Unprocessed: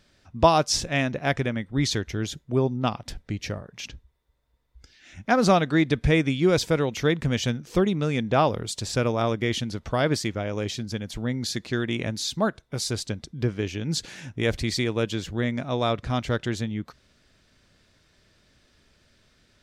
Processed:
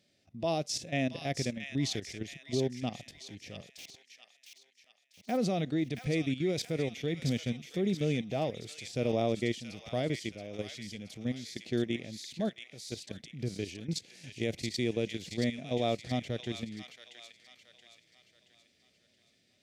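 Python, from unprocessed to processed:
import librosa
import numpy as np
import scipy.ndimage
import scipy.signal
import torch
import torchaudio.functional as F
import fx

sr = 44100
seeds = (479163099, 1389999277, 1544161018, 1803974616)

y = fx.delta_hold(x, sr, step_db=-34.5, at=(3.69, 5.36), fade=0.02)
y = scipy.signal.sosfilt(scipy.signal.butter(2, 140.0, 'highpass', fs=sr, output='sos'), y)
y = fx.band_shelf(y, sr, hz=1200.0, db=-12.5, octaves=1.1)
y = fx.level_steps(y, sr, step_db=14)
y = fx.echo_wet_highpass(y, sr, ms=676, feedback_pct=43, hz=1700.0, wet_db=-5)
y = fx.hpss(y, sr, part='percussive', gain_db=-7)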